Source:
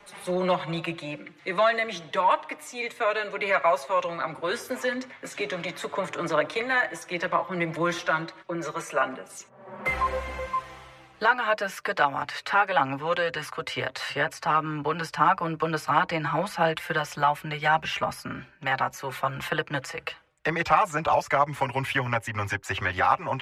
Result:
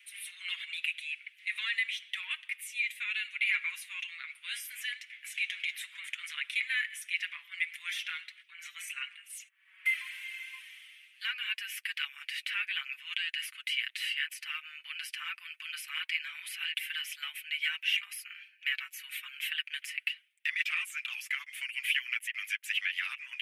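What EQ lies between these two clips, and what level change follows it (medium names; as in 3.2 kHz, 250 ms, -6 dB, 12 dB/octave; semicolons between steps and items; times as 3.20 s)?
steep high-pass 2.2 kHz 36 dB/octave; high-order bell 5.4 kHz -11.5 dB 1.2 oct; +4.0 dB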